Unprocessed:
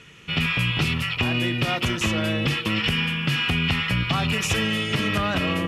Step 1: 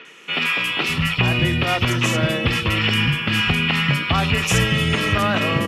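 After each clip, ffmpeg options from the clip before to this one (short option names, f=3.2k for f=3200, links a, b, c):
-filter_complex "[0:a]acrossover=split=250|4000[a][b][c];[c]adelay=50[d];[a]adelay=610[e];[e][b][d]amix=inputs=3:normalize=0,areverse,acompressor=mode=upward:threshold=-37dB:ratio=2.5,areverse,volume=5.5dB"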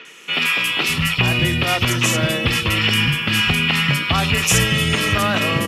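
-af "highshelf=f=4.7k:g=10.5"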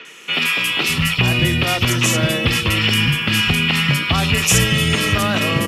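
-filter_complex "[0:a]acrossover=split=490|3000[a][b][c];[b]acompressor=threshold=-24dB:ratio=2[d];[a][d][c]amix=inputs=3:normalize=0,volume=2dB"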